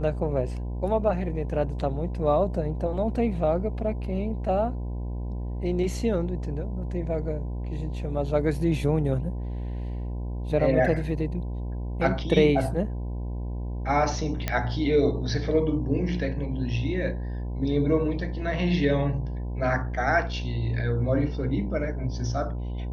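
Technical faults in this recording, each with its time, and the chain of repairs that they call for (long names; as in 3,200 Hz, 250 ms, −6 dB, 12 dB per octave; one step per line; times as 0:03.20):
mains buzz 60 Hz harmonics 17 −31 dBFS
0:14.48: click −11 dBFS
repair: click removal
hum removal 60 Hz, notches 17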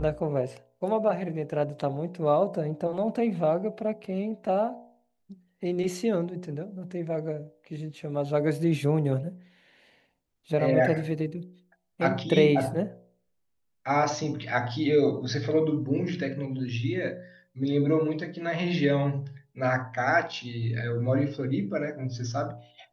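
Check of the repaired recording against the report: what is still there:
none of them is left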